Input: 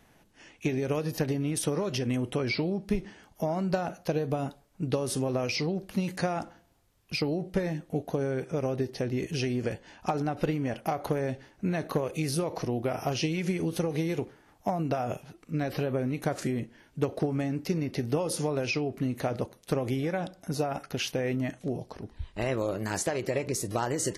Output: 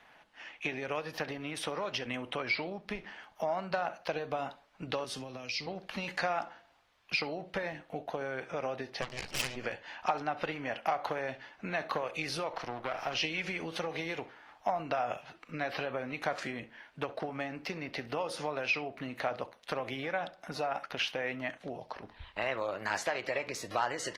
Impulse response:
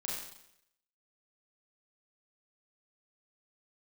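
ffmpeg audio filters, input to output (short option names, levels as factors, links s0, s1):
-filter_complex "[0:a]asettb=1/sr,asplit=3[s0][s1][s2];[s0]atrim=end=12.534[s3];[s1]atrim=start=12.53:end=13.13,asetpts=PTS-STARTPTS,afade=t=in:d=0.004:c=qsin,afade=t=out:st=0.596:d=0.004:c=qsin,aeval=exprs='if(lt(val(0),0),0.251*val(0),val(0))':c=same[s4];[s2]atrim=start=13.126[s5];[s3][s4]acrossfade=d=0.004:c1=hsin:c2=qsin[s6];[s6][s5]acrossfade=d=0.004:c1=qsin:c2=hsin,acrossover=split=350 4400:gain=0.0891 1 0.0794[s7][s8][s9];[s7][s8][s9]amix=inputs=3:normalize=0,asplit=2[s10][s11];[s11]acompressor=threshold=0.00891:ratio=16,volume=1.33[s12];[s10][s12]amix=inputs=2:normalize=0,equalizer=f=390:w=1.2:g=-11.5,asplit=2[s13][s14];[s14]adelay=67,lowpass=f=2800:p=1,volume=0.15,asplit=2[s15][s16];[s16]adelay=67,lowpass=f=2800:p=1,volume=0.15[s17];[s15][s17]amix=inputs=2:normalize=0[s18];[s13][s18]amix=inputs=2:normalize=0,asettb=1/sr,asplit=3[s19][s20][s21];[s19]atrim=end=5.044[s22];[s20]atrim=start=5.04:end=5.67,asetpts=PTS-STARTPTS,afade=t=in:d=0.004:c=qsin,afade=t=out:st=0.626:d=0.004:c=qsin,acrossover=split=290|3000[s23][s24][s25];[s24]acompressor=threshold=0.00316:ratio=4[s26];[s23][s26][s25]amix=inputs=3:normalize=0[s27];[s21]atrim=start=5.666[s28];[s22][s27]acrossfade=d=0.004:c1=hsin:c2=qsin[s29];[s29][s28]acrossfade=d=0.004:c1=qsin:c2=hsin,asplit=3[s30][s31][s32];[s30]afade=t=out:st=9.01:d=0.02[s33];[s31]aeval=exprs='0.1*(cos(1*acos(clip(val(0)/0.1,-1,1)))-cos(1*PI/2))+0.0251*(cos(6*acos(clip(val(0)/0.1,-1,1)))-cos(6*PI/2))+0.0141*(cos(7*acos(clip(val(0)/0.1,-1,1)))-cos(7*PI/2))+0.0398*(cos(8*acos(clip(val(0)/0.1,-1,1)))-cos(8*PI/2))':c=same,afade=t=in:st=9.01:d=0.02,afade=t=out:st=9.55:d=0.02[s34];[s32]afade=t=in:st=9.55:d=0.02[s35];[s33][s34][s35]amix=inputs=3:normalize=0,volume=1.19" -ar 48000 -c:a libopus -b:a 32k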